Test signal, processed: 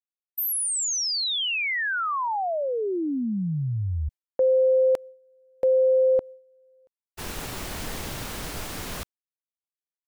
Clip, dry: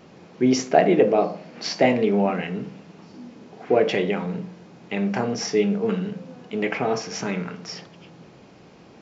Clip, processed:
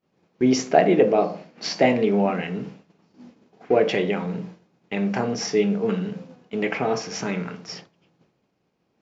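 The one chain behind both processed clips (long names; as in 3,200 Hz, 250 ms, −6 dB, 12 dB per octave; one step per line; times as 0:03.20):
downward expander −34 dBFS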